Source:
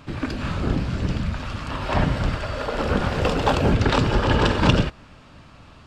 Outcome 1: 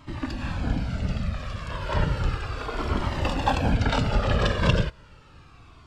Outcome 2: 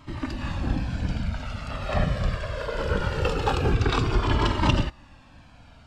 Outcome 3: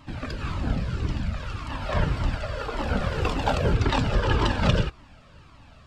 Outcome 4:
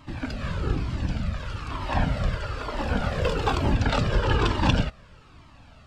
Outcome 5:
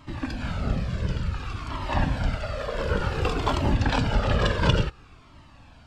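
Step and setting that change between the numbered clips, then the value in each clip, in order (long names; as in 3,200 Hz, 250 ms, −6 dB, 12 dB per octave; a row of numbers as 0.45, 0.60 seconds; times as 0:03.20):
flanger whose copies keep moving one way, speed: 0.33, 0.22, 1.8, 1.1, 0.56 Hertz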